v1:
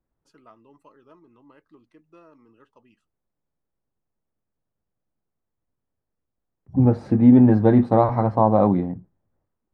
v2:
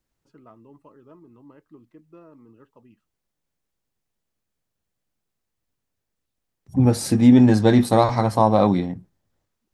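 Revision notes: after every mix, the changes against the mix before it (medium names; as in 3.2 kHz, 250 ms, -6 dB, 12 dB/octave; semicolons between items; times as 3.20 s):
first voice: add tilt EQ -3 dB/octave; second voice: remove low-pass 1.2 kHz 12 dB/octave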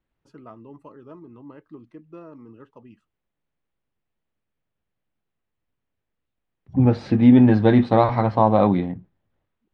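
first voice +6.0 dB; second voice: add low-pass 3.3 kHz 24 dB/octave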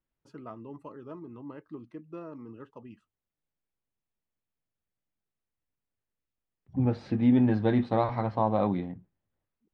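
second voice -9.5 dB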